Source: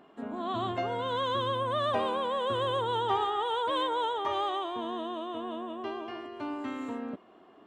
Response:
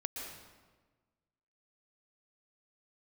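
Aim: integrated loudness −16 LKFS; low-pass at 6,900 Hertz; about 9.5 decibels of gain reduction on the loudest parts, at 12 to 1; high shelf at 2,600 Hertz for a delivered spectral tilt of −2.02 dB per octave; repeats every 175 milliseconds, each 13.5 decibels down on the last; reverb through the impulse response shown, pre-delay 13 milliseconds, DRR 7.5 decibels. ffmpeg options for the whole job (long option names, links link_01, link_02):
-filter_complex "[0:a]lowpass=6900,highshelf=frequency=2600:gain=4.5,acompressor=threshold=-33dB:ratio=12,aecho=1:1:175|350:0.211|0.0444,asplit=2[link_01][link_02];[1:a]atrim=start_sample=2205,adelay=13[link_03];[link_02][link_03]afir=irnorm=-1:irlink=0,volume=-8dB[link_04];[link_01][link_04]amix=inputs=2:normalize=0,volume=20.5dB"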